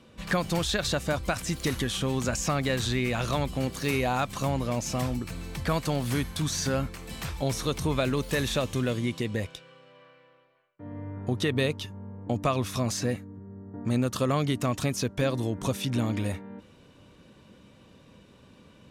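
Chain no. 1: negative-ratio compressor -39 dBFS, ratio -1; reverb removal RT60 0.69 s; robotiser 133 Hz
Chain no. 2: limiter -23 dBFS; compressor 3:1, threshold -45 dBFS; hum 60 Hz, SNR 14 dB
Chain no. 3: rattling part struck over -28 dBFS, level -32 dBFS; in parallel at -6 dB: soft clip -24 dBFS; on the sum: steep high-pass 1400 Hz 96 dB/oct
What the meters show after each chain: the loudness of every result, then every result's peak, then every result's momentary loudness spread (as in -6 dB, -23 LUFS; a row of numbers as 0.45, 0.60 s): -41.5, -45.0, -32.0 LUFS; -12.5, -30.0, -15.0 dBFS; 12, 11, 11 LU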